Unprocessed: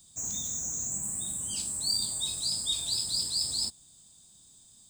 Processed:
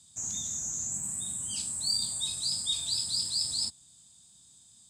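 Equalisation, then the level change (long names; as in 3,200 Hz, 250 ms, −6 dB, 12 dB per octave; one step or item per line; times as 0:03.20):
high-pass filter 68 Hz
low-pass filter 11,000 Hz 12 dB per octave
parametric band 440 Hz −6.5 dB 1.6 octaves
0.0 dB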